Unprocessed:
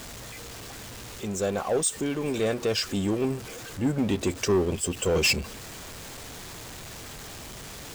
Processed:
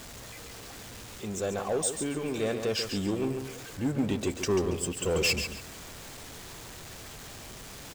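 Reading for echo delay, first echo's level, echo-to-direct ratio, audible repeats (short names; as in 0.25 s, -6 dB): 0.139 s, -8.0 dB, -7.5 dB, 2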